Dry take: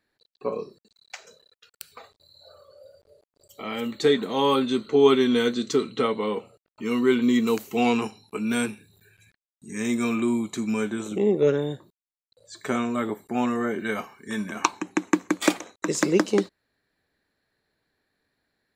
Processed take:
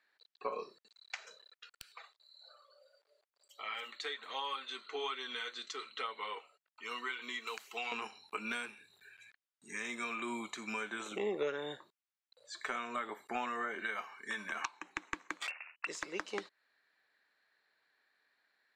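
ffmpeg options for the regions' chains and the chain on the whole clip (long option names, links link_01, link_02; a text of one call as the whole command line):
ffmpeg -i in.wav -filter_complex "[0:a]asettb=1/sr,asplit=3[link_01][link_02][link_03];[link_01]atrim=end=1.924[link_04];[link_02]atrim=start=1.92:end=7.92,asetpts=PTS-STARTPTS,afade=type=in:duration=0.004:curve=qsin,afade=type=out:start_time=5.996:duration=0.004:curve=qsin,highpass=frequency=1000:poles=1,flanger=delay=0.2:depth=2.8:regen=-48:speed=1.2:shape=sinusoidal[link_05];[link_03]atrim=start=7.916[link_06];[link_04][link_05]acrossfade=duration=0.004:curve1=hsin:curve2=qsin[link_07];[link_07][link_06]acrossfade=duration=0.004:curve1=qsin:curve2=hsin,asettb=1/sr,asplit=3[link_08][link_09][link_10];[link_08]atrim=end=15.474[link_11];[link_09]atrim=start=15.47:end=15.87,asetpts=PTS-STARTPTS,afade=type=in:duration=0.004:curve=qsin,afade=type=out:start_time=0.396:duration=0.004:curve=qsin,lowpass=frequency=2600:width_type=q:width=0.5098,lowpass=frequency=2600:width_type=q:width=0.6013,lowpass=frequency=2600:width_type=q:width=0.9,lowpass=frequency=2600:width_type=q:width=2.563,afreqshift=-3000,tremolo=f=79:d=0.519,asoftclip=type=hard:threshold=-22.5dB[link_12];[link_10]atrim=start=15.866[link_13];[link_11][link_12]acrossfade=duration=0.004:curve1=hsin:curve2=qsin[link_14];[link_14][link_13]acrossfade=duration=0.004:curve1=qsin:curve2=hsin,highpass=1300,acompressor=threshold=-40dB:ratio=6,aemphasis=mode=reproduction:type=riaa,volume=6dB" out.wav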